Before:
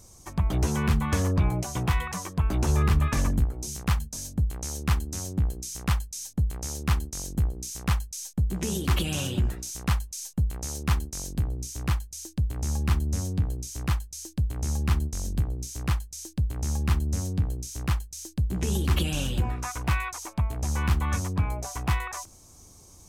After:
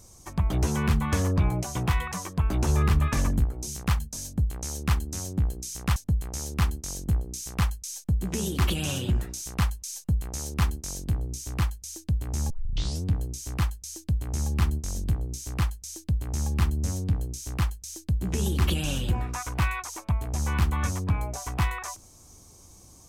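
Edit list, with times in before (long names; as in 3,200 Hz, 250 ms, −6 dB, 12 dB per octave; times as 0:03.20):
0:05.96–0:06.25: remove
0:12.79: tape start 0.54 s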